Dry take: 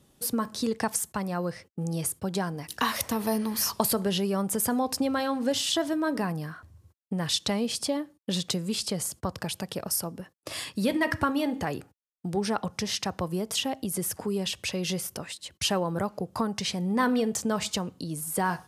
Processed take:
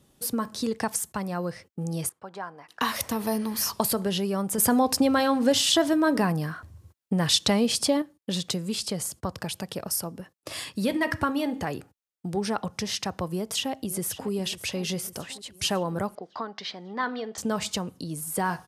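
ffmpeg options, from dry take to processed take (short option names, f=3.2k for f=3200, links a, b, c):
-filter_complex "[0:a]asettb=1/sr,asplit=3[a][b][c];[a]atrim=end=2.094[d];[b]atrim=start=2.09:end=2.81,asetpts=PTS-STARTPTS,afade=t=in:d=0.004:c=qsin,afade=t=out:st=0.716:d=0.004:c=qsin,bandpass=f=1.1k:t=q:w=1.3[e];[c]atrim=start=2.806[f];[d][e]acrossfade=d=0.004:c1=hsin:c2=qsin[g];[g][f]acrossfade=d=0.004:c1=qsin:c2=hsin,asettb=1/sr,asplit=3[h][i][j];[h]atrim=end=4.584[k];[i]atrim=start=4.58:end=8.02,asetpts=PTS-STARTPTS,afade=t=in:d=0.004:c=qsin,afade=t=out:st=3.436:d=0.004:c=qsin,acontrast=35[l];[j]atrim=start=8.016[m];[k][l]acrossfade=d=0.004:c1=hsin:c2=qsin[n];[n][m]acrossfade=d=0.004:c1=qsin:c2=hsin,asplit=2[o][p];[p]afade=t=in:st=13.32:d=0.01,afade=t=out:st=14.31:d=0.01,aecho=0:1:550|1100|1650|2200|2750|3300|3850:0.177828|0.115588|0.0751323|0.048836|0.0317434|0.0206332|0.0134116[q];[o][q]amix=inputs=2:normalize=0,asettb=1/sr,asplit=3[r][s][t];[r]atrim=end=16.154[u];[s]atrim=start=16.15:end=17.38,asetpts=PTS-STARTPTS,afade=t=in:d=0.004:c=qsin,afade=t=out:st=1.226:d=0.004:c=qsin,highpass=430,equalizer=f=510:t=q:w=4:g=-6,equalizer=f=920:t=q:w=4:g=-3,equalizer=f=2.6k:t=q:w=4:g=-8,lowpass=f=4.3k:w=0.5412,lowpass=f=4.3k:w=1.3066[v];[t]atrim=start=17.376[w];[u][v]acrossfade=d=0.004:c1=hsin:c2=qsin[x];[x][w]acrossfade=d=0.004:c1=qsin:c2=hsin"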